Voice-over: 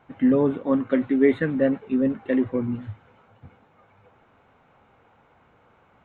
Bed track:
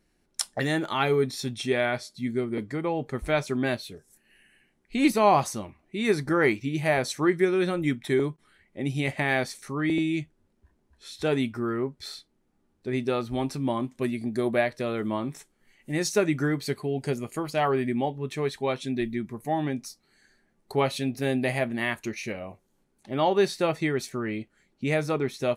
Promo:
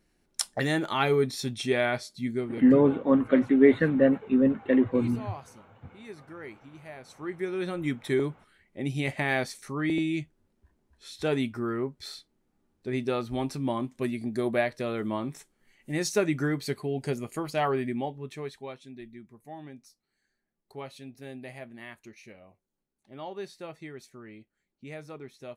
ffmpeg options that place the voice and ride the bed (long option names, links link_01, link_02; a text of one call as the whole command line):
ffmpeg -i stem1.wav -i stem2.wav -filter_complex "[0:a]adelay=2400,volume=0dB[link_01];[1:a]volume=18dB,afade=type=out:start_time=2.19:duration=0.83:silence=0.1,afade=type=in:start_time=7.09:duration=1:silence=0.11885,afade=type=out:start_time=17.61:duration=1.21:silence=0.199526[link_02];[link_01][link_02]amix=inputs=2:normalize=0" out.wav